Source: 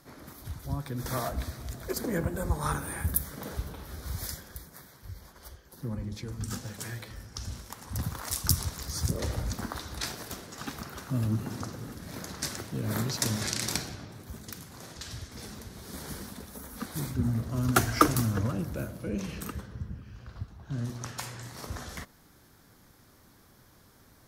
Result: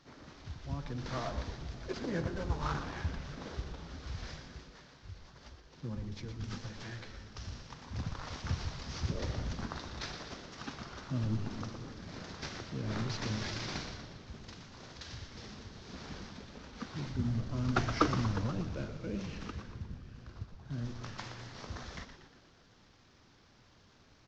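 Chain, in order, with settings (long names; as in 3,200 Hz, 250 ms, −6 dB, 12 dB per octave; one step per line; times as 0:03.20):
variable-slope delta modulation 32 kbit/s
echo with shifted repeats 119 ms, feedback 56%, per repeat −110 Hz, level −9 dB
level −5 dB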